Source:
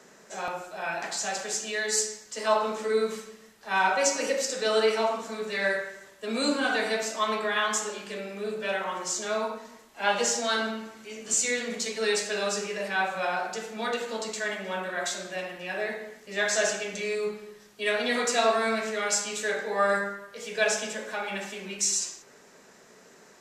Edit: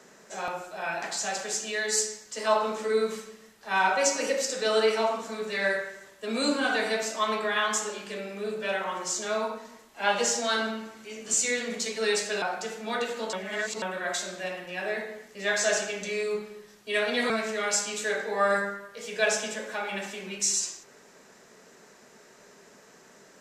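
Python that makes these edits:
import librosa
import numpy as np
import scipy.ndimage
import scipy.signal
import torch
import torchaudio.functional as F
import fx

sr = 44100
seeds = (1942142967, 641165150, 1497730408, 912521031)

y = fx.edit(x, sr, fx.cut(start_s=12.42, length_s=0.92),
    fx.reverse_span(start_s=14.25, length_s=0.49),
    fx.cut(start_s=18.22, length_s=0.47), tone=tone)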